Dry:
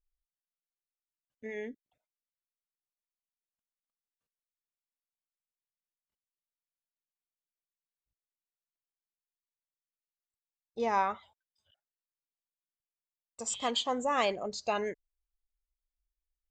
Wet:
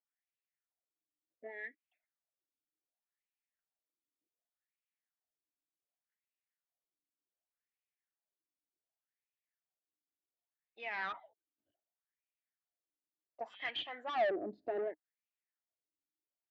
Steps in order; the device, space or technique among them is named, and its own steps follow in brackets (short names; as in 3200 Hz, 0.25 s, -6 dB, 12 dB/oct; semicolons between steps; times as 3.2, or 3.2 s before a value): wah-wah guitar rig (wah 0.67 Hz 270–2600 Hz, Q 4.6; tube stage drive 41 dB, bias 0.25; speaker cabinet 84–4000 Hz, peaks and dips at 110 Hz +4 dB, 310 Hz +10 dB, 680 Hz +9 dB, 1100 Hz -6 dB, 1800 Hz +8 dB); gain +6 dB